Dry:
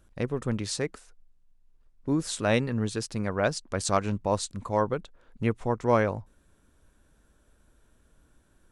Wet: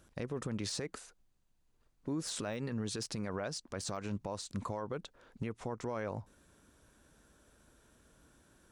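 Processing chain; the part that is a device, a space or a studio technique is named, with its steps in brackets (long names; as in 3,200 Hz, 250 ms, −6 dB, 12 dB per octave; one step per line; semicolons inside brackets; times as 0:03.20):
broadcast voice chain (high-pass filter 110 Hz 6 dB per octave; de-essing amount 80%; downward compressor 5 to 1, threshold −31 dBFS, peak gain reduction 13 dB; parametric band 5,500 Hz +3.5 dB 0.88 octaves; brickwall limiter −30.5 dBFS, peak gain reduction 9.5 dB)
0:00.81–0:02.18: notch filter 5,400 Hz, Q 13
level +2 dB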